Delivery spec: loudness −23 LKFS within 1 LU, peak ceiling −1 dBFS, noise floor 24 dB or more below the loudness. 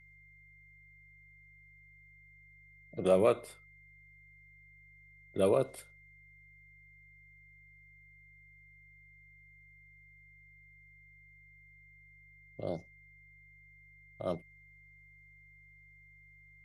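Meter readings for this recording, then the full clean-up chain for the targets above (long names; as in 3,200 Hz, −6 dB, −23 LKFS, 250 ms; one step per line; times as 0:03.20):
mains hum 50 Hz; hum harmonics up to 150 Hz; level of the hum −61 dBFS; interfering tone 2,100 Hz; level of the tone −58 dBFS; integrated loudness −32.5 LKFS; sample peak −15.0 dBFS; target loudness −23.0 LKFS
→ hum removal 50 Hz, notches 3
notch filter 2,100 Hz, Q 30
level +9.5 dB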